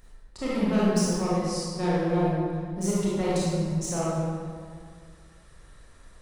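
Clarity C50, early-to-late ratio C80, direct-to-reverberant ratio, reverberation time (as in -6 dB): -4.5 dB, -1.0 dB, -8.0 dB, 2.0 s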